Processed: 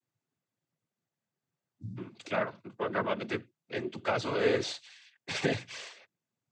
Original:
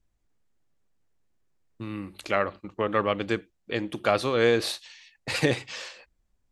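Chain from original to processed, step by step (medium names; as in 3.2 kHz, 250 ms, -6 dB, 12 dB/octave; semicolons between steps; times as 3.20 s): spectral replace 1.12–1.94 s, 240–4600 Hz before; noise-vocoded speech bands 16; trim -5.5 dB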